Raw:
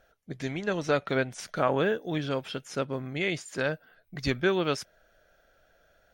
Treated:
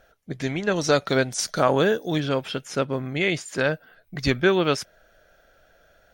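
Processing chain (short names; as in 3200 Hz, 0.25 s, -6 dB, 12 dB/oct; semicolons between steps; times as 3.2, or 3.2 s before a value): 0.76–2.2 resonant high shelf 3600 Hz +7.5 dB, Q 1.5; gain +6 dB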